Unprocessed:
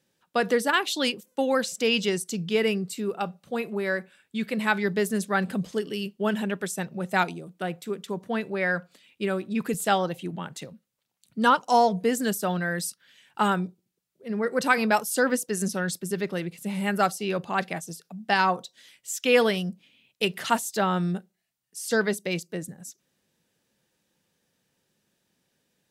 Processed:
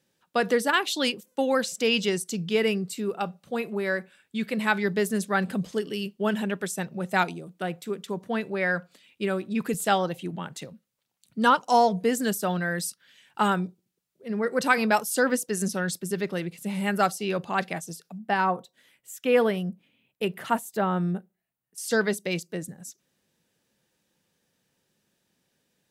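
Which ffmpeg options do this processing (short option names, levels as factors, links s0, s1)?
-filter_complex "[0:a]asettb=1/sr,asplit=3[s0][s1][s2];[s0]atrim=end=18.184[s3];[s1]atrim=start=18.18:end=21.78,asetpts=PTS-STARTPTS,afade=t=in:d=0.004:c=qsin,afade=t=out:st=3.596:d=0.004:c=qsin,equalizer=f=5200:w=0.62:g=-14[s4];[s2]atrim=start=21.776[s5];[s3][s4]acrossfade=d=0.004:c1=hsin:c2=qsin[s6];[s6][s5]acrossfade=d=0.004:c1=qsin:c2=hsin"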